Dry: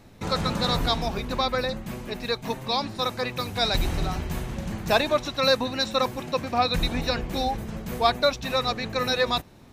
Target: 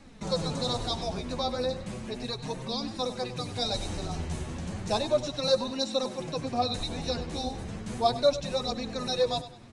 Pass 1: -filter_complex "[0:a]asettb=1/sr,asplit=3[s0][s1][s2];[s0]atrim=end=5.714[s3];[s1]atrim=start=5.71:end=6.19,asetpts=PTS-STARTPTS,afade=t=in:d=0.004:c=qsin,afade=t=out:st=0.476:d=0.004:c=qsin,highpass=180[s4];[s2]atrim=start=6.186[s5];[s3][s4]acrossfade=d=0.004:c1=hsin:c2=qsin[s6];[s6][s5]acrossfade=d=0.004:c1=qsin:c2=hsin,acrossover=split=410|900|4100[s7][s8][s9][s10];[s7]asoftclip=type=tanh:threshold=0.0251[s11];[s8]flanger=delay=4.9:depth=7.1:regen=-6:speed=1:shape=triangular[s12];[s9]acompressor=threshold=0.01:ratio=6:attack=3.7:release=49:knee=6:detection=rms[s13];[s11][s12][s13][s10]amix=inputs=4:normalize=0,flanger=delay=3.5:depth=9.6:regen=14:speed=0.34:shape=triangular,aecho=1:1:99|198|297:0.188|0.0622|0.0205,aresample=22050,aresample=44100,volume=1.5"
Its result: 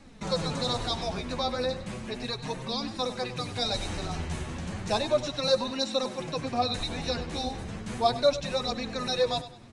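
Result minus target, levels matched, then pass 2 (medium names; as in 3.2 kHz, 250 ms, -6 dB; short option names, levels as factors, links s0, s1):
compression: peak gain reduction -7.5 dB
-filter_complex "[0:a]asettb=1/sr,asplit=3[s0][s1][s2];[s0]atrim=end=5.714[s3];[s1]atrim=start=5.71:end=6.19,asetpts=PTS-STARTPTS,afade=t=in:d=0.004:c=qsin,afade=t=out:st=0.476:d=0.004:c=qsin,highpass=180[s4];[s2]atrim=start=6.186[s5];[s3][s4]acrossfade=d=0.004:c1=hsin:c2=qsin[s6];[s6][s5]acrossfade=d=0.004:c1=qsin:c2=hsin,acrossover=split=410|900|4100[s7][s8][s9][s10];[s7]asoftclip=type=tanh:threshold=0.0251[s11];[s8]flanger=delay=4.9:depth=7.1:regen=-6:speed=1:shape=triangular[s12];[s9]acompressor=threshold=0.00355:ratio=6:attack=3.7:release=49:knee=6:detection=rms[s13];[s11][s12][s13][s10]amix=inputs=4:normalize=0,flanger=delay=3.5:depth=9.6:regen=14:speed=0.34:shape=triangular,aecho=1:1:99|198|297:0.188|0.0622|0.0205,aresample=22050,aresample=44100,volume=1.5"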